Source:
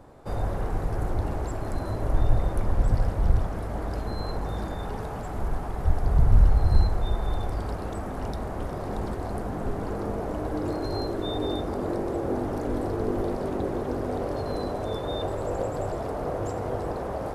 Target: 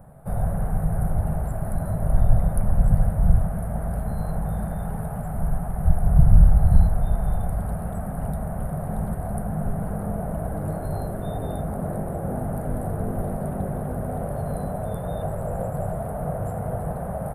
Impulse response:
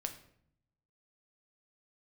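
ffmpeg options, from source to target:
-af "firequalizer=gain_entry='entry(110,0);entry(160,9);entry(310,-16);entry(660,0);entry(970,-9);entry(1500,-5);entry(2400,-14);entry(5900,-29);entry(9300,7)':delay=0.05:min_phase=1,volume=4dB"

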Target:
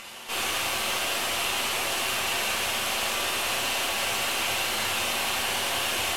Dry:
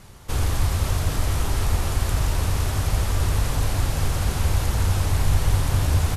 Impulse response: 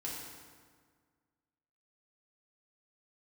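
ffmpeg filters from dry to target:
-filter_complex "[0:a]highpass=540,acompressor=mode=upward:threshold=-41dB:ratio=2.5,aeval=exprs='(tanh(35.5*val(0)+0.65)-tanh(0.65))/35.5':channel_layout=same,equalizer=frequency=2800:width_type=o:width=0.57:gain=11.5[link_01];[1:a]atrim=start_sample=2205,atrim=end_sample=4410,asetrate=33957,aresample=44100[link_02];[link_01][link_02]afir=irnorm=-1:irlink=0,volume=6dB"

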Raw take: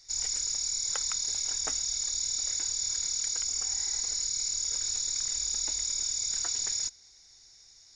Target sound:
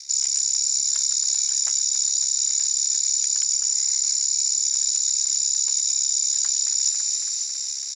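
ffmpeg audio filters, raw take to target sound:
ffmpeg -i in.wav -filter_complex "[0:a]aeval=exprs='val(0)*sin(2*PI*34*n/s)':channel_layout=same,alimiter=level_in=4.5dB:limit=-24dB:level=0:latency=1:release=124,volume=-4.5dB,acontrast=82,bass=frequency=250:gain=-5,treble=frequency=4000:gain=9,asplit=7[link_01][link_02][link_03][link_04][link_05][link_06][link_07];[link_02]adelay=276,afreqshift=46,volume=-12.5dB[link_08];[link_03]adelay=552,afreqshift=92,volume=-17.2dB[link_09];[link_04]adelay=828,afreqshift=138,volume=-22dB[link_10];[link_05]adelay=1104,afreqshift=184,volume=-26.7dB[link_11];[link_06]adelay=1380,afreqshift=230,volume=-31.4dB[link_12];[link_07]adelay=1656,afreqshift=276,volume=-36.2dB[link_13];[link_01][link_08][link_09][link_10][link_11][link_12][link_13]amix=inputs=7:normalize=0,areverse,acompressor=threshold=-34dB:ratio=5,areverse,tiltshelf=frequency=670:gain=-8.5,afreqshift=110,volume=5.5dB" out.wav

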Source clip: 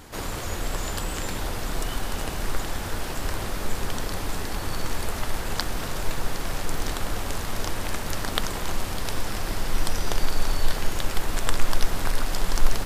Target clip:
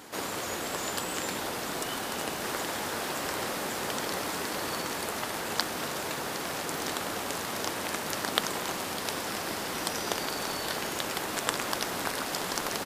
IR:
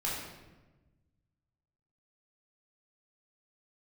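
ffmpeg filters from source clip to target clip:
-filter_complex "[0:a]highpass=220,asplit=3[link_01][link_02][link_03];[link_01]afade=type=out:start_time=2.42:duration=0.02[link_04];[link_02]asplit=6[link_05][link_06][link_07][link_08][link_09][link_10];[link_06]adelay=140,afreqshift=130,volume=-6.5dB[link_11];[link_07]adelay=280,afreqshift=260,volume=-13.6dB[link_12];[link_08]adelay=420,afreqshift=390,volume=-20.8dB[link_13];[link_09]adelay=560,afreqshift=520,volume=-27.9dB[link_14];[link_10]adelay=700,afreqshift=650,volume=-35dB[link_15];[link_05][link_11][link_12][link_13][link_14][link_15]amix=inputs=6:normalize=0,afade=type=in:start_time=2.42:duration=0.02,afade=type=out:start_time=4.81:duration=0.02[link_16];[link_03]afade=type=in:start_time=4.81:duration=0.02[link_17];[link_04][link_16][link_17]amix=inputs=3:normalize=0"

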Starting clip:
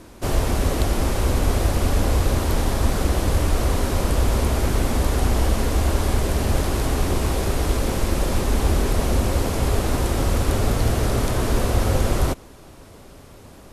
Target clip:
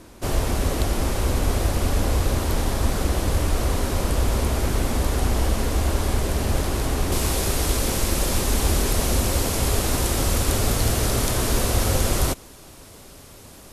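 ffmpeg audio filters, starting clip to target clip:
ffmpeg -i in.wav -af "asetnsamples=nb_out_samples=441:pad=0,asendcmd='7.12 highshelf g 10.5',highshelf=frequency=3000:gain=2.5,volume=-2dB" out.wav

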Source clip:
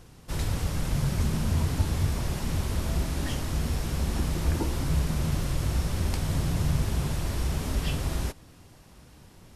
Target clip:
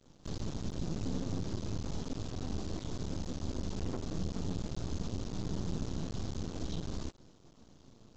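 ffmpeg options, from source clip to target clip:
ffmpeg -i in.wav -filter_complex "[0:a]flanger=delay=2.3:depth=8.8:regen=77:speed=0.47:shape=sinusoidal,acrossover=split=480[link_01][link_02];[link_02]acompressor=threshold=-41dB:ratio=6[link_03];[link_01][link_03]amix=inputs=2:normalize=0,asetrate=51597,aresample=44100,acrossover=split=2800[link_04][link_05];[link_04]asoftclip=type=tanh:threshold=-26.5dB[link_06];[link_06][link_05]amix=inputs=2:normalize=0,equalizer=frequency=250:width_type=o:width=1:gain=7,equalizer=frequency=2000:width_type=o:width=1:gain=-9,equalizer=frequency=4000:width_type=o:width=1:gain=4,aresample=16000,aeval=exprs='max(val(0),0)':channel_layout=same,aresample=44100,volume=-1dB" out.wav

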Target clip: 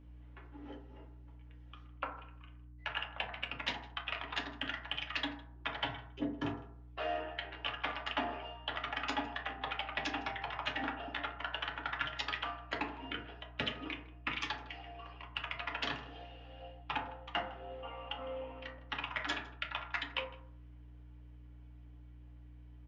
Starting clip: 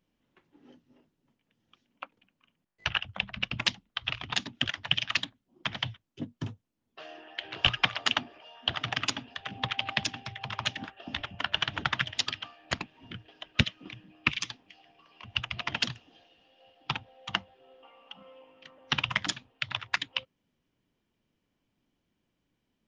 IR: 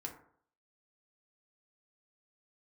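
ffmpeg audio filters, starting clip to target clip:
-filter_complex "[0:a]acrossover=split=340 3200:gain=0.0891 1 0.141[link_01][link_02][link_03];[link_01][link_02][link_03]amix=inputs=3:normalize=0,areverse,acompressor=threshold=-43dB:ratio=16,areverse,aeval=exprs='val(0)+0.000708*(sin(2*PI*60*n/s)+sin(2*PI*2*60*n/s)/2+sin(2*PI*3*60*n/s)/3+sin(2*PI*4*60*n/s)/4+sin(2*PI*5*60*n/s)/5)':channel_layout=same,asplit=2[link_04][link_05];[link_05]adelay=157.4,volume=-21dB,highshelf=frequency=4000:gain=-3.54[link_06];[link_04][link_06]amix=inputs=2:normalize=0[link_07];[1:a]atrim=start_sample=2205,asetrate=41895,aresample=44100[link_08];[link_07][link_08]afir=irnorm=-1:irlink=0,volume=12dB"

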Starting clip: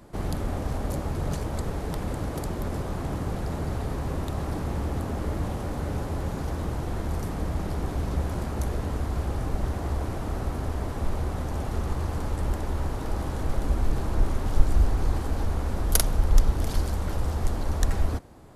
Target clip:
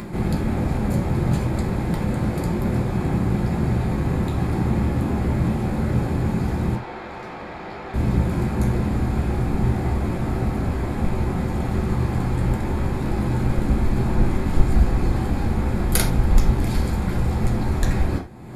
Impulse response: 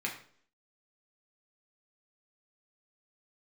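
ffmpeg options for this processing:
-filter_complex "[0:a]lowshelf=frequency=410:gain=5.5,acompressor=mode=upward:threshold=-28dB:ratio=2.5,asettb=1/sr,asplit=3[link_01][link_02][link_03];[link_01]atrim=end=6.754[link_04];[link_02]atrim=start=6.75:end=7.94,asetpts=PTS-STARTPTS,afade=type=in:duration=0.004:curve=qsin,afade=type=out:start_time=1.186:duration=0.004:curve=qsin,acrossover=split=430 5100:gain=0.0794 1 0.0794[link_05][link_06][link_07];[link_05][link_06][link_07]amix=inputs=3:normalize=0[link_08];[link_03]atrim=start=7.936[link_09];[link_04][link_08]acrossfade=duration=0.004:curve1=hsin:curve2=qsin[link_10];[link_10][link_09]acrossfade=duration=0.004:curve1=qsin:curve2=hsin[link_11];[1:a]atrim=start_sample=2205,atrim=end_sample=4410[link_12];[link_11][link_12]afir=irnorm=-1:irlink=0,volume=2dB"

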